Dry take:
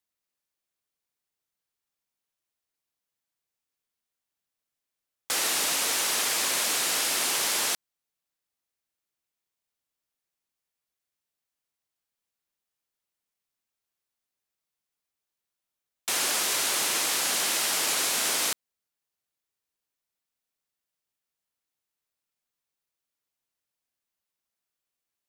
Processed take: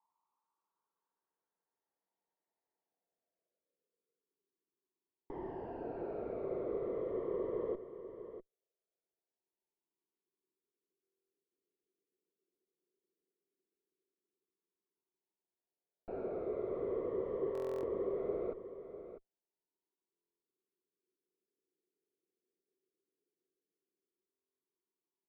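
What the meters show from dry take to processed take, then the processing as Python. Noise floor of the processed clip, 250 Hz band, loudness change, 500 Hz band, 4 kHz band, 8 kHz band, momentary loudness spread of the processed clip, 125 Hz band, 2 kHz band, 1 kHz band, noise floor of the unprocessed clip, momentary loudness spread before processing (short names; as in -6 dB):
under -85 dBFS, +0.5 dB, -15.5 dB, +3.5 dB, under -40 dB, under -40 dB, 13 LU, +1.0 dB, -32.0 dB, -16.0 dB, under -85 dBFS, 5 LU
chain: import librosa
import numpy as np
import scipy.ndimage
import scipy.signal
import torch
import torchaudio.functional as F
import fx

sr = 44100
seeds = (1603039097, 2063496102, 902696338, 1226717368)

p1 = fx.cabinet(x, sr, low_hz=190.0, low_slope=24, high_hz=6000.0, hz=(230.0, 360.0, 530.0, 1000.0, 2000.0, 3700.0), db=(-9, 6, 4, 9, 3, -6))
p2 = p1 + 0.3 * np.pad(p1, (int(4.4 * sr / 1000.0), 0))[:len(p1)]
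p3 = fx.phaser_stages(p2, sr, stages=12, low_hz=260.0, high_hz=1000.0, hz=0.1, feedback_pct=40)
p4 = fx.tube_stage(p3, sr, drive_db=35.0, bias=0.35)
p5 = fx.air_absorb(p4, sr, metres=210.0)
p6 = p5 + fx.echo_single(p5, sr, ms=648, db=-11.0, dry=0)
p7 = fx.filter_sweep_lowpass(p6, sr, from_hz=860.0, to_hz=380.0, start_s=2.76, end_s=4.55, q=5.8)
p8 = fx.buffer_glitch(p7, sr, at_s=(11.03, 17.53, 20.12, 24.3), block=1024, repeats=12)
y = F.gain(torch.from_numpy(p8), 4.5).numpy()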